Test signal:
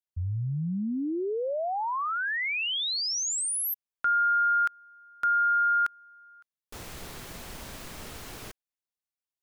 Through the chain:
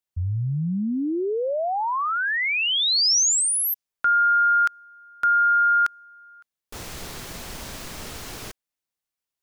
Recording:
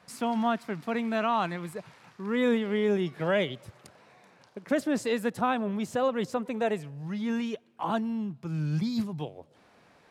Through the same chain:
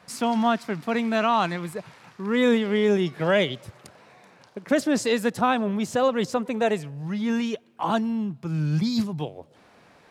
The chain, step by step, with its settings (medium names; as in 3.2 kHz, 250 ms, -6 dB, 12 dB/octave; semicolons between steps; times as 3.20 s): dynamic bell 5.6 kHz, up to +6 dB, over -50 dBFS, Q 1; trim +5 dB